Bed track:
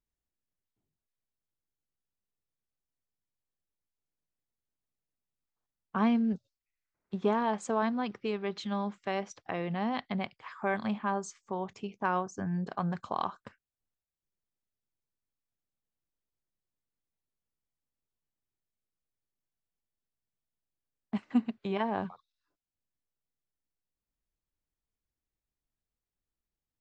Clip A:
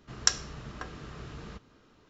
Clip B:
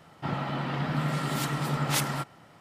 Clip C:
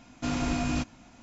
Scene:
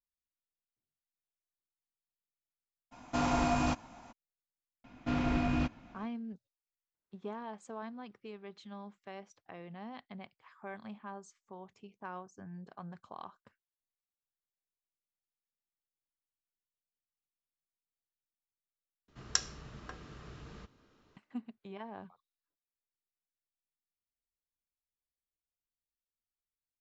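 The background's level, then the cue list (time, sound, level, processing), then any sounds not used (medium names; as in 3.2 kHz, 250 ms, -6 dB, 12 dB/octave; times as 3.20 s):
bed track -14 dB
2.91 s: add C -4 dB, fades 0.02 s + peaking EQ 890 Hz +11 dB 1.3 oct
4.84 s: add C -2 dB + low-pass 2.9 kHz
19.08 s: replace with A -6.5 dB
not used: B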